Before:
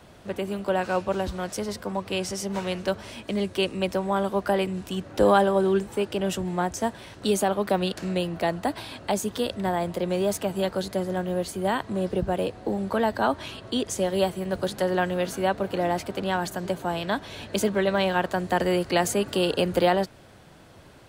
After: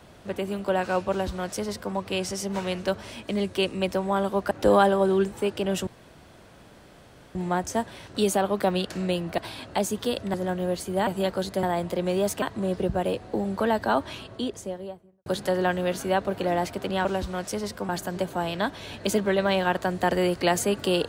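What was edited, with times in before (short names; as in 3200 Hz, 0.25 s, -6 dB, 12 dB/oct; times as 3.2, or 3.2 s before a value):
1.1–1.94 copy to 16.38
4.51–5.06 cut
6.42 insert room tone 1.48 s
8.45–8.71 cut
9.67–10.46 swap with 11.02–11.75
13.33–14.59 studio fade out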